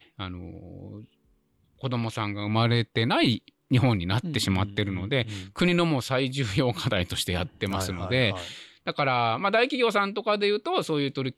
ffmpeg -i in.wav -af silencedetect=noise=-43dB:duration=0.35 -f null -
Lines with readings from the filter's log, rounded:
silence_start: 1.05
silence_end: 1.81 | silence_duration: 0.76